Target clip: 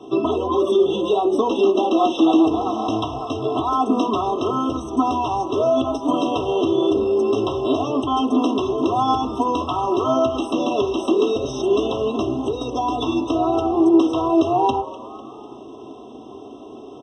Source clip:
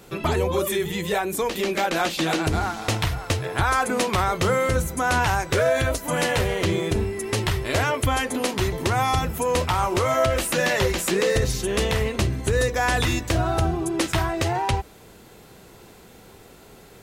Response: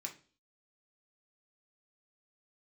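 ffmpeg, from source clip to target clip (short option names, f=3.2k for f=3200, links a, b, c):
-filter_complex "[0:a]acrossover=split=400|1200[a][b][c];[a]acompressor=threshold=-28dB:ratio=4[d];[b]acompressor=threshold=-31dB:ratio=4[e];[c]acompressor=threshold=-28dB:ratio=4[f];[d][e][f]amix=inputs=3:normalize=0,lowpass=f=5.7k:w=0.5412,lowpass=f=5.7k:w=1.3066,lowshelf=f=410:g=10.5,aecho=1:1:2.9:0.99,alimiter=limit=-11.5dB:level=0:latency=1:release=79,highpass=190,asplit=5[g][h][i][j][k];[h]adelay=249,afreqshift=150,volume=-17dB[l];[i]adelay=498,afreqshift=300,volume=-23.4dB[m];[j]adelay=747,afreqshift=450,volume=-29.8dB[n];[k]adelay=996,afreqshift=600,volume=-36.1dB[o];[g][l][m][n][o]amix=inputs=5:normalize=0,asplit=2[p][q];[1:a]atrim=start_sample=2205,lowpass=2.1k[r];[q][r]afir=irnorm=-1:irlink=0,volume=2dB[s];[p][s]amix=inputs=2:normalize=0,afftfilt=real='re*eq(mod(floor(b*sr/1024/1300),2),0)':imag='im*eq(mod(floor(b*sr/1024/1300),2),0)':win_size=1024:overlap=0.75"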